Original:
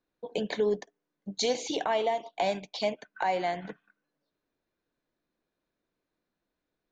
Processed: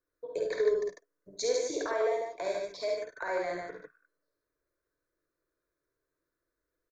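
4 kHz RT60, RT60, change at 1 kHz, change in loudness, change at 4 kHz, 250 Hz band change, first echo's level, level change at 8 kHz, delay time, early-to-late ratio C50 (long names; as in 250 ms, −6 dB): no reverb audible, no reverb audible, −7.5 dB, −1.5 dB, −7.0 dB, −7.5 dB, −4.0 dB, −0.5 dB, 51 ms, no reverb audible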